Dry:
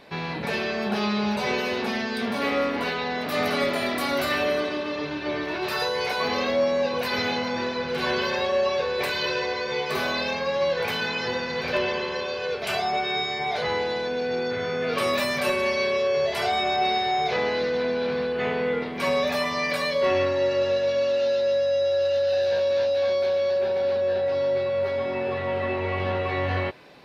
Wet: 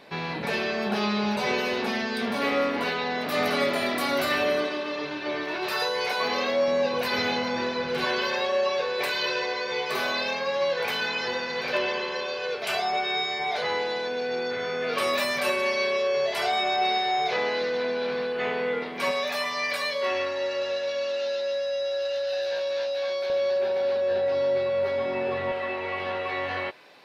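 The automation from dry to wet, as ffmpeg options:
-af "asetnsamples=n=441:p=0,asendcmd='4.67 highpass f 340;6.68 highpass f 120;8.05 highpass f 400;19.11 highpass f 930;23.3 highpass f 330;24.11 highpass f 160;25.52 highpass f 660',highpass=f=140:p=1"

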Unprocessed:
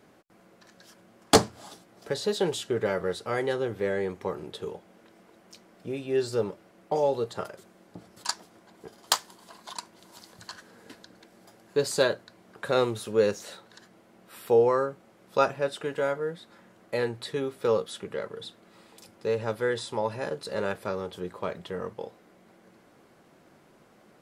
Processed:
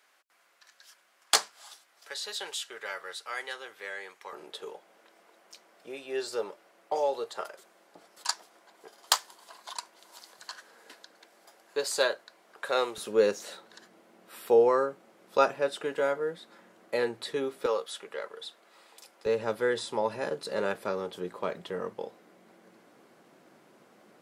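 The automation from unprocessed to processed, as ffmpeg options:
-af "asetnsamples=n=441:p=0,asendcmd='4.33 highpass f 570;12.98 highpass f 250;17.66 highpass f 590;19.26 highpass f 190',highpass=1300"

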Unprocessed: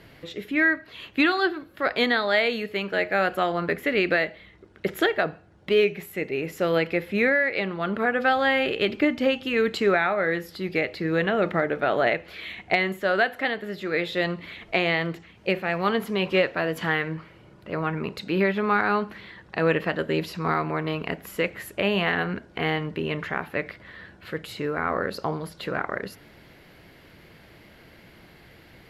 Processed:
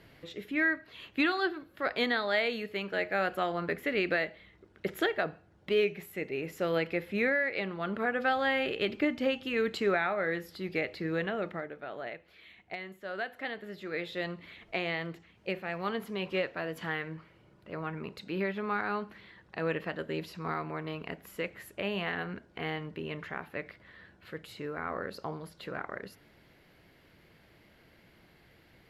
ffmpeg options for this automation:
-af "volume=1.12,afade=t=out:st=11.03:d=0.72:silence=0.281838,afade=t=in:st=12.99:d=0.6:silence=0.398107"

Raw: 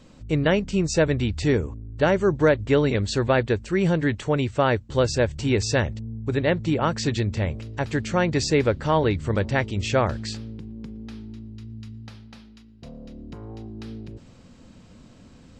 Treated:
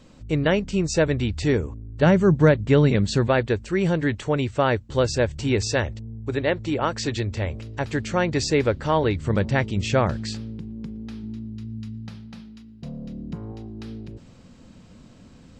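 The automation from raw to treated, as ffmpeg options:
-af "asetnsamples=n=441:p=0,asendcmd='2.02 equalizer g 11;3.27 equalizer g -1;5.67 equalizer g -9;7.53 equalizer g -2;9.27 equalizer g 6.5;11.23 equalizer g 13.5;13.52 equalizer g 2',equalizer=f=170:t=o:w=0.69:g=-0.5"

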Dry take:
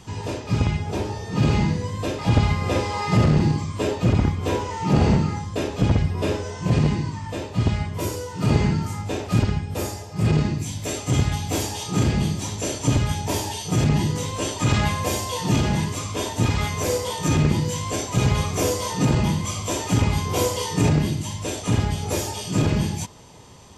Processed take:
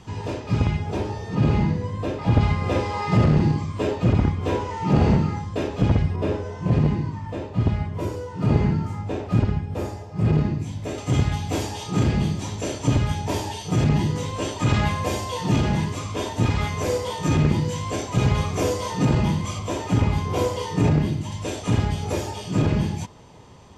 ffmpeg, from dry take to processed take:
-af "asetnsamples=n=441:p=0,asendcmd='1.35 lowpass f 1600;2.41 lowpass f 2800;6.16 lowpass f 1300;10.98 lowpass f 3300;19.59 lowpass f 2000;21.32 lowpass f 4100;22.12 lowpass f 2500',lowpass=f=3300:p=1"

